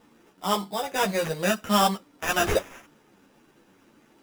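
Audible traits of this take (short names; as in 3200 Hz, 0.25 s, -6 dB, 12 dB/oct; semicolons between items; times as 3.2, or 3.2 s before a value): aliases and images of a low sample rate 4300 Hz, jitter 0%; a shimmering, thickened sound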